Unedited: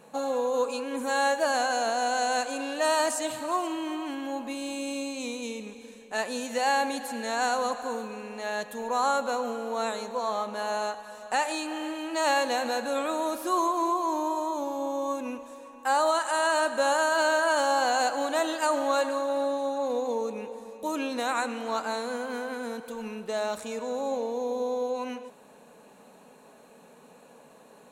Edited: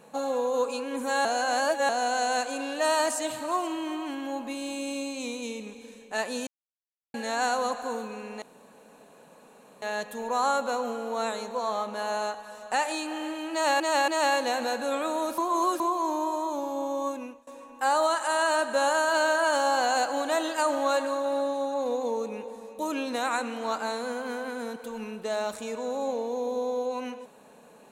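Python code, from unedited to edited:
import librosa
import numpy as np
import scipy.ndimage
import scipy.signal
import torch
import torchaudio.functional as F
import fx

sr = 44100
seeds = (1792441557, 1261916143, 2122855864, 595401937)

y = fx.edit(x, sr, fx.reverse_span(start_s=1.25, length_s=0.64),
    fx.silence(start_s=6.47, length_s=0.67),
    fx.insert_room_tone(at_s=8.42, length_s=1.4),
    fx.repeat(start_s=12.12, length_s=0.28, count=3),
    fx.reverse_span(start_s=13.42, length_s=0.42),
    fx.fade_out_to(start_s=15.12, length_s=0.39, floor_db=-23.0), tone=tone)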